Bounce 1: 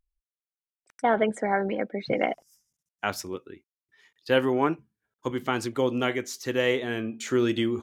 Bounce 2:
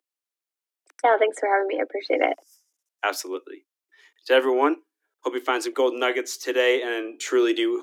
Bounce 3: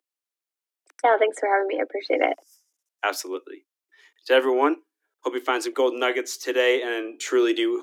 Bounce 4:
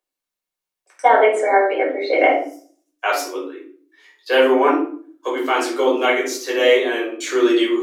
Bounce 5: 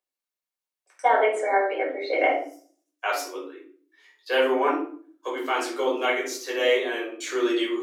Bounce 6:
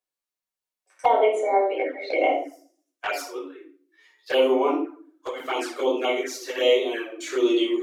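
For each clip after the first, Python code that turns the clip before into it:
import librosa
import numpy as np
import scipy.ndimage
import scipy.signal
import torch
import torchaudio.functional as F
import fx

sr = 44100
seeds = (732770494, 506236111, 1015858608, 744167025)

y1 = scipy.signal.sosfilt(scipy.signal.butter(16, 280.0, 'highpass', fs=sr, output='sos'), x)
y1 = F.gain(torch.from_numpy(y1), 4.5).numpy()
y2 = y1
y3 = fx.room_shoebox(y2, sr, seeds[0], volume_m3=470.0, walls='furnished', distance_m=5.5)
y3 = F.gain(torch.from_numpy(y3), -2.5).numpy()
y4 = fx.low_shelf(y3, sr, hz=210.0, db=-9.5)
y4 = F.gain(torch.from_numpy(y4), -6.0).numpy()
y5 = fx.hpss(y4, sr, part='harmonic', gain_db=4)
y5 = fx.env_flanger(y5, sr, rest_ms=9.5, full_db=-18.5)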